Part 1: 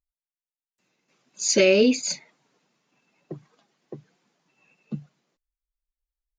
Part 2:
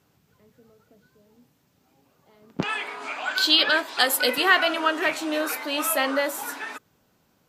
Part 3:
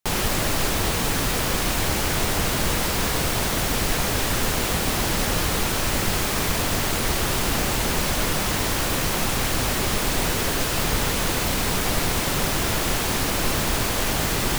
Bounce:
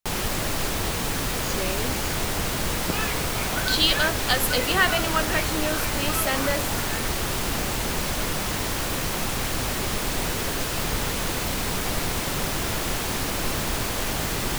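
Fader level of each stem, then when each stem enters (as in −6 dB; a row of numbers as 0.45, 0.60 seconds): −15.0, −2.5, −3.5 decibels; 0.00, 0.30, 0.00 seconds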